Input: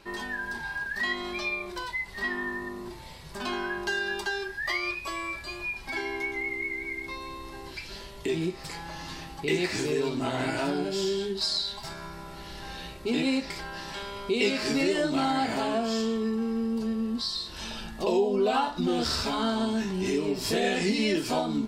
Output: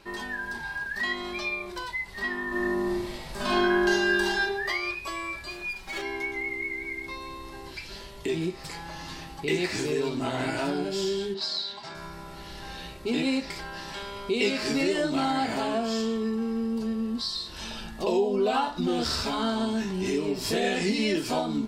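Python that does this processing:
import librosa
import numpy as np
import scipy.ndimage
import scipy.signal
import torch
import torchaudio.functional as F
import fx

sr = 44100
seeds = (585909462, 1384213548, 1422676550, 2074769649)

y = fx.reverb_throw(x, sr, start_s=2.47, length_s=1.95, rt60_s=0.93, drr_db=-5.5)
y = fx.lower_of_two(y, sr, delay_ms=5.3, at=(5.49, 6.01), fade=0.02)
y = fx.bandpass_edges(y, sr, low_hz=190.0, high_hz=4800.0, at=(11.34, 11.95))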